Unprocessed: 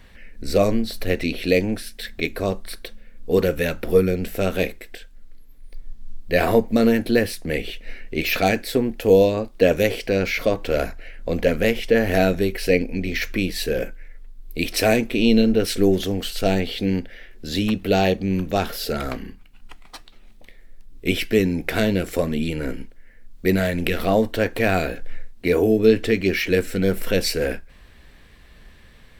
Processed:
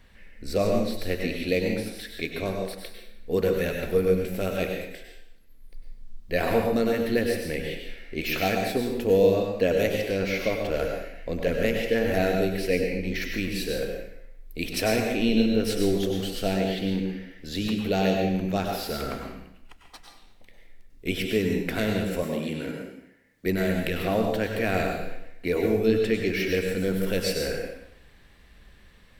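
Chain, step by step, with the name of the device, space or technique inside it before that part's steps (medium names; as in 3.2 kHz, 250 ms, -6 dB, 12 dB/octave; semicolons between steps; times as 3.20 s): bathroom (reverberation RT60 0.75 s, pre-delay 92 ms, DRR 1.5 dB); 22.23–23.46 s: high-pass 140 Hz 12 dB/octave; trim -7 dB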